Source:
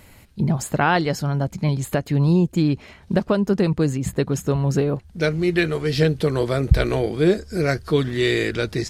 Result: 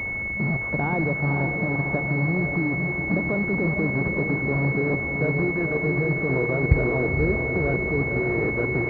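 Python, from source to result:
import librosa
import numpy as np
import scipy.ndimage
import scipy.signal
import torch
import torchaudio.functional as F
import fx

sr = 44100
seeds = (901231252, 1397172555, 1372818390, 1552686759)

p1 = fx.delta_mod(x, sr, bps=16000, step_db=-19.0)
p2 = fx.highpass(p1, sr, hz=44.0, slope=6)
p3 = fx.level_steps(p2, sr, step_db=12)
p4 = p3 + fx.echo_diffused(p3, sr, ms=509, feedback_pct=58, wet_db=-4.5, dry=0)
y = fx.pwm(p4, sr, carrier_hz=2200.0)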